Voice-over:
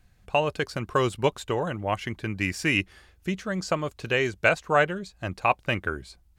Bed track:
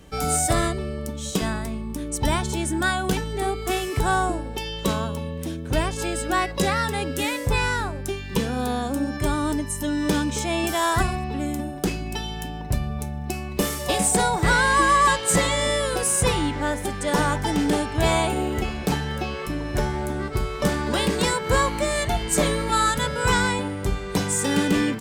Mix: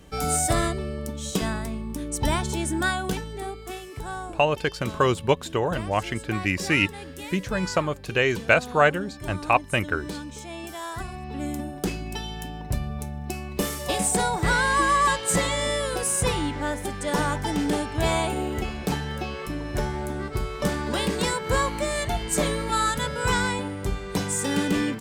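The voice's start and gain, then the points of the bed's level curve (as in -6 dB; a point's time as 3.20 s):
4.05 s, +2.5 dB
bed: 2.85 s -1.5 dB
3.84 s -12.5 dB
11.02 s -12.5 dB
11.45 s -3 dB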